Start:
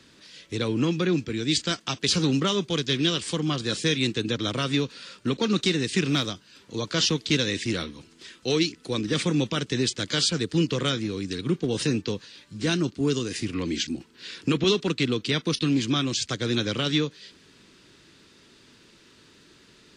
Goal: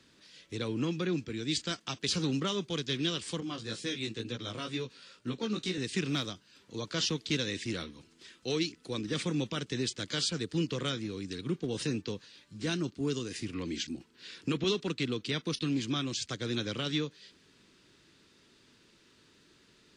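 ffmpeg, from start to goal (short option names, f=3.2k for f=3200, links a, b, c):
-filter_complex "[0:a]asettb=1/sr,asplit=3[a][b][c];[a]atrim=end=3.404[d];[b]atrim=start=3.4:end=5.78,asetpts=PTS-STARTPTS,afade=t=in:d=0.004:c=qsin,afade=t=out:st=2.376:d=0.004:c=qsin,flanger=delay=16:depth=2.7:speed=2.1[e];[c]atrim=start=5.776[f];[d][e]acrossfade=d=0.004:c1=hsin:c2=qsin[g];[g][f]acrossfade=d=0.004:c1=qsin:c2=hsin,volume=-8dB"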